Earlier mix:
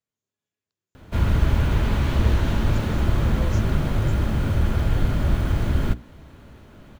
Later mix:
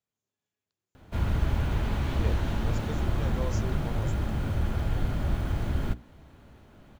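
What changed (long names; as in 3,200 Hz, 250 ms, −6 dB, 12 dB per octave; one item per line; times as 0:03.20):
background −7.0 dB
master: add parametric band 770 Hz +4.5 dB 0.29 octaves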